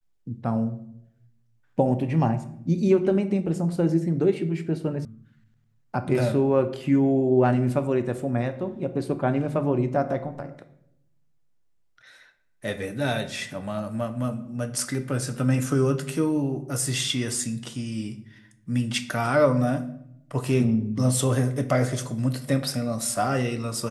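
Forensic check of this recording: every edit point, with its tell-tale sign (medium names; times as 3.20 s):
5.05 s: sound stops dead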